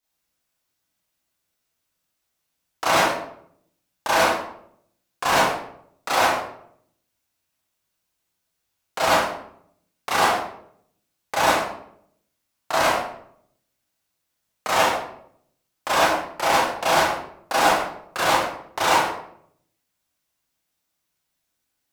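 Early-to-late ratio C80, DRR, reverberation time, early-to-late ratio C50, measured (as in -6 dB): 4.5 dB, -9.0 dB, 0.70 s, -0.5 dB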